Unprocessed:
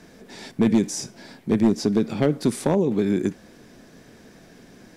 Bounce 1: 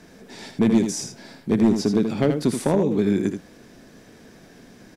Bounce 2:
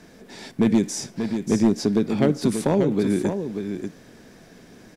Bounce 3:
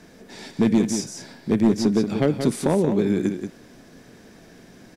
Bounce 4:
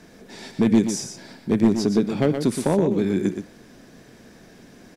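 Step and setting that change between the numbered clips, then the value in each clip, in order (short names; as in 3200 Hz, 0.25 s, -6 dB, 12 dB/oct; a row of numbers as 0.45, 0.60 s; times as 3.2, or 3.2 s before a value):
echo, time: 80, 586, 180, 121 ms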